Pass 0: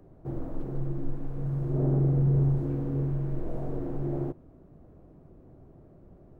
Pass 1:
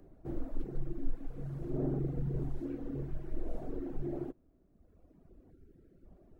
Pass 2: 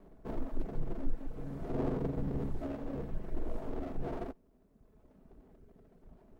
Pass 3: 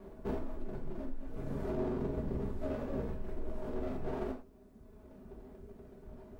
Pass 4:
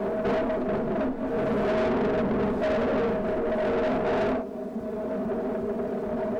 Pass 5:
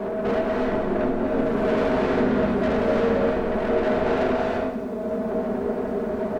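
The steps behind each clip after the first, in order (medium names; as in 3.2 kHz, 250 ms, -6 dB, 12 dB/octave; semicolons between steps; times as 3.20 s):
time-frequency box 5.51–6.06 s, 550–1300 Hz -9 dB; reverb removal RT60 1.8 s; ten-band graphic EQ 125 Hz -11 dB, 500 Hz -4 dB, 1 kHz -7 dB; trim +1 dB
comb filter that takes the minimum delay 4.6 ms; trim +2.5 dB
compression, threshold -39 dBFS, peak gain reduction 14.5 dB; gated-style reverb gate 140 ms falling, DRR -0.5 dB; trim +4.5 dB
compression 1.5:1, threshold -45 dBFS, peak gain reduction 5.5 dB; small resonant body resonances 220/450/650 Hz, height 12 dB; overdrive pedal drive 30 dB, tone 2.3 kHz, clips at -21.5 dBFS; trim +3.5 dB
delay 187 ms -12.5 dB; gated-style reverb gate 360 ms rising, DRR -1 dB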